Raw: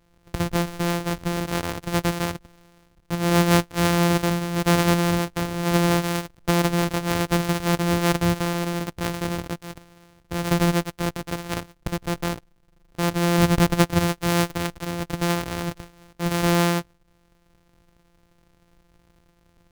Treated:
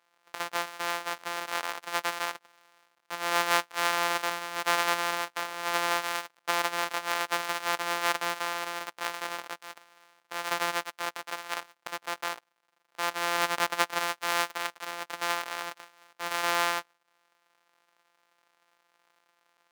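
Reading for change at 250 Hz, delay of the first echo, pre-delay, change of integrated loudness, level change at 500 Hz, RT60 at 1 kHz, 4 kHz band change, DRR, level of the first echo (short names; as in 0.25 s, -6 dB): -23.0 dB, none, none, -7.0 dB, -10.5 dB, none, -3.0 dB, none, none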